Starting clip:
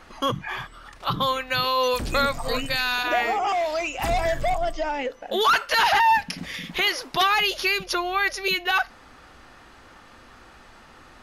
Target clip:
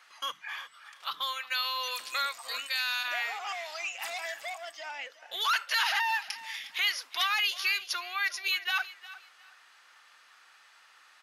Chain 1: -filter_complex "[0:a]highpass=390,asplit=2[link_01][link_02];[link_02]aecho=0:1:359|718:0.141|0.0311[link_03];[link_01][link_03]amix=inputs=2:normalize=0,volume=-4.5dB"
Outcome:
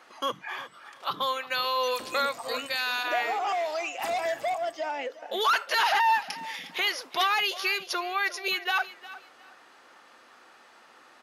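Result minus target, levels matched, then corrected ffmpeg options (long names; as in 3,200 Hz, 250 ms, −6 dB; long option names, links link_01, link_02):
500 Hz band +12.5 dB
-filter_complex "[0:a]highpass=1500,asplit=2[link_01][link_02];[link_02]aecho=0:1:359|718:0.141|0.0311[link_03];[link_01][link_03]amix=inputs=2:normalize=0,volume=-4.5dB"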